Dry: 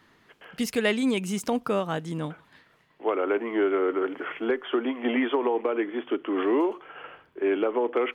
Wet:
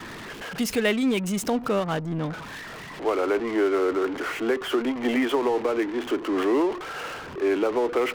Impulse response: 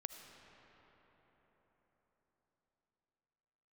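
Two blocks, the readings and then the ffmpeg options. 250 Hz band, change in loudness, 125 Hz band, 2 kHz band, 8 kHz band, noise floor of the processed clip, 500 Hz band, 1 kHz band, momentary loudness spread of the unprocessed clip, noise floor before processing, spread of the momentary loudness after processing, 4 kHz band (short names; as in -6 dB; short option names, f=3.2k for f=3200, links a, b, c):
+2.0 dB, +1.5 dB, +4.0 dB, +2.5 dB, n/a, -39 dBFS, +1.5 dB, +2.0 dB, 9 LU, -62 dBFS, 11 LU, +3.5 dB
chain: -af "aeval=exprs='val(0)+0.5*0.0316*sgn(val(0))':c=same,anlmdn=6.31"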